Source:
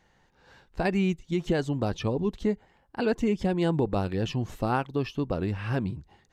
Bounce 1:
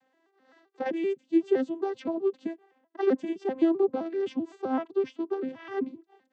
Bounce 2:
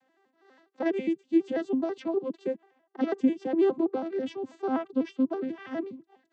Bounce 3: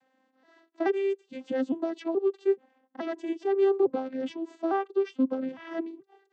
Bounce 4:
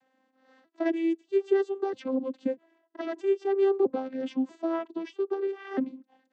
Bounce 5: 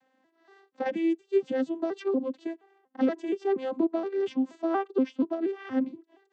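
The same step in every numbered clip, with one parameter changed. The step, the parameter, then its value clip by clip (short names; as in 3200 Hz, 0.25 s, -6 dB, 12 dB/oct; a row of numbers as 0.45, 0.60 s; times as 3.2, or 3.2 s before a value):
arpeggiated vocoder, a note every: 129, 82, 428, 641, 237 ms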